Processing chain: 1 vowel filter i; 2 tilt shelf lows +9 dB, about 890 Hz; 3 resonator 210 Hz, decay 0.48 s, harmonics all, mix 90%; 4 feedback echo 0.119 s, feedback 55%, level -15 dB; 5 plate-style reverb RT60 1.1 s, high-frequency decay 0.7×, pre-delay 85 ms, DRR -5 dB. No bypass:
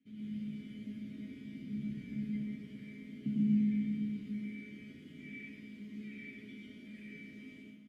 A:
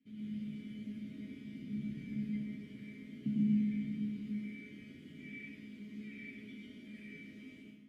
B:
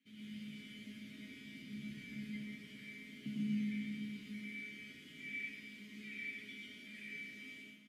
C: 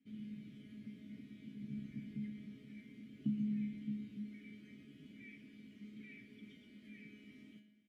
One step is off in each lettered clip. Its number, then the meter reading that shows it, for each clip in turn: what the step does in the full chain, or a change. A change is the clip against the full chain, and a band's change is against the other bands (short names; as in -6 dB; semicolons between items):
4, loudness change -1.5 LU; 2, 2 kHz band +14.0 dB; 5, crest factor change +3.0 dB